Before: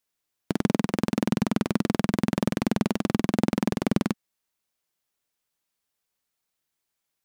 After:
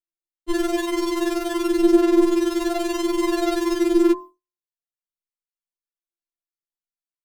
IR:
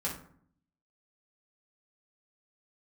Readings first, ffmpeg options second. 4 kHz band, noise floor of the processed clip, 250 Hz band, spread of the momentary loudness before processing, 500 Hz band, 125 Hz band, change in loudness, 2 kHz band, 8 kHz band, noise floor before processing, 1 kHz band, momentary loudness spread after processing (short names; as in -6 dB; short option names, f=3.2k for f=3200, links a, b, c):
+6.0 dB, under -85 dBFS, +5.5 dB, 2 LU, +10.5 dB, under -20 dB, +6.0 dB, +4.0 dB, +6.5 dB, -82 dBFS, +5.0 dB, 7 LU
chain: -filter_complex "[0:a]aphaser=in_gain=1:out_gain=1:delay=2:decay=0.62:speed=0.48:type=sinusoidal,bandreject=f=45.25:t=h:w=4,bandreject=f=90.5:t=h:w=4,bandreject=f=135.75:t=h:w=4,bandreject=f=181:t=h:w=4,bandreject=f=226.25:t=h:w=4,bandreject=f=271.5:t=h:w=4,bandreject=f=316.75:t=h:w=4,bandreject=f=362:t=h:w=4,bandreject=f=407.25:t=h:w=4,bandreject=f=452.5:t=h:w=4,bandreject=f=497.75:t=h:w=4,bandreject=f=543:t=h:w=4,bandreject=f=588.25:t=h:w=4,bandreject=f=633.5:t=h:w=4,bandreject=f=678.75:t=h:w=4,bandreject=f=724:t=h:w=4,bandreject=f=769.25:t=h:w=4,bandreject=f=814.5:t=h:w=4,bandreject=f=859.75:t=h:w=4,bandreject=f=905:t=h:w=4,bandreject=f=950.25:t=h:w=4,bandreject=f=995.5:t=h:w=4,bandreject=f=1.04075k:t=h:w=4,bandreject=f=1.086k:t=h:w=4,bandreject=f=1.13125k:t=h:w=4,bandreject=f=1.1765k:t=h:w=4,bandreject=f=1.22175k:t=h:w=4,agate=range=-33dB:threshold=-28dB:ratio=3:detection=peak,asplit=2[a][b];[b]alimiter=limit=-12dB:level=0:latency=1:release=31,volume=-2.5dB[c];[a][c]amix=inputs=2:normalize=0,equalizer=f=2.3k:t=o:w=0.22:g=-7.5,acontrast=72,lowshelf=f=350:t=q:w=1.5:g=10,afftfilt=real='re*4*eq(mod(b,16),0)':imag='im*4*eq(mod(b,16),0)':win_size=2048:overlap=0.75,volume=-1dB"